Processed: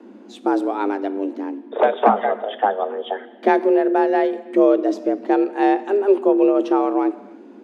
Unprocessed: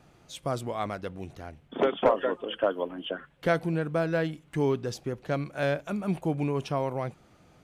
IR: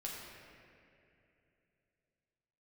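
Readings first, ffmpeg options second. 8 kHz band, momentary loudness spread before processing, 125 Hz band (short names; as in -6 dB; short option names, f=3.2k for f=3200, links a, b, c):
n/a, 11 LU, under -15 dB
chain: -filter_complex "[0:a]aemphasis=mode=reproduction:type=riaa,afreqshift=200,asplit=2[a][b];[1:a]atrim=start_sample=2205,afade=t=out:st=0.38:d=0.01,atrim=end_sample=17199,highshelf=f=6.5k:g=11[c];[b][c]afir=irnorm=-1:irlink=0,volume=-11dB[d];[a][d]amix=inputs=2:normalize=0,volume=4dB"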